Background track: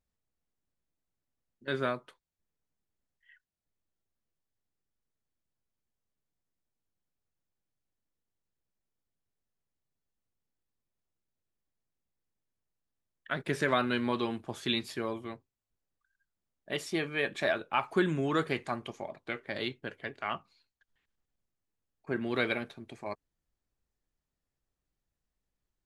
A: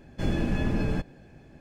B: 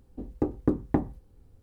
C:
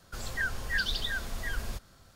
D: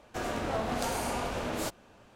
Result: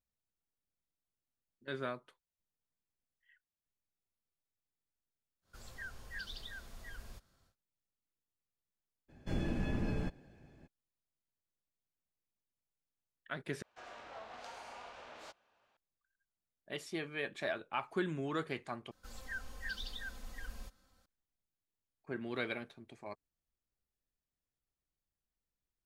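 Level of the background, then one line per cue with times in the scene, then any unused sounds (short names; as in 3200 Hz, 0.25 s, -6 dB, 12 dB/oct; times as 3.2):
background track -8 dB
5.41 add C -15 dB, fades 0.10 s
9.08 add A -9 dB, fades 0.02 s
13.62 replace with D -14 dB + three-band isolator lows -17 dB, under 560 Hz, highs -21 dB, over 6100 Hz
18.91 replace with C -15 dB + comb 3.9 ms, depth 77%
not used: B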